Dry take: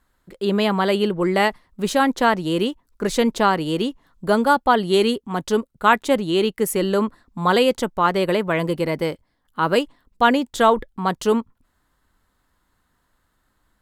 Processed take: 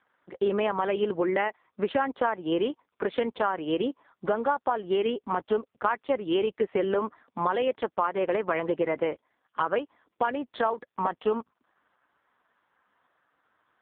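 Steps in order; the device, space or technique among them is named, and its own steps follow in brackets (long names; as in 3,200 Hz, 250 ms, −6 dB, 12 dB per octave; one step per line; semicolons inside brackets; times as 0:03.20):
voicemail (band-pass filter 390–2,600 Hz; downward compressor 8 to 1, threshold −28 dBFS, peak gain reduction 18.5 dB; level +6 dB; AMR narrowband 4.75 kbit/s 8,000 Hz)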